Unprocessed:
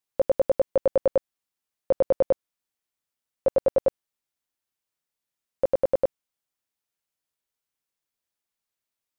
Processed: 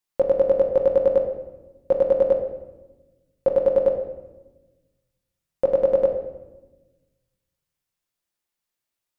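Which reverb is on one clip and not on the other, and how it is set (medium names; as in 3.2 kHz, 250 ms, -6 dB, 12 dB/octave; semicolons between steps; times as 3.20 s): simulated room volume 610 m³, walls mixed, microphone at 0.9 m; trim +1 dB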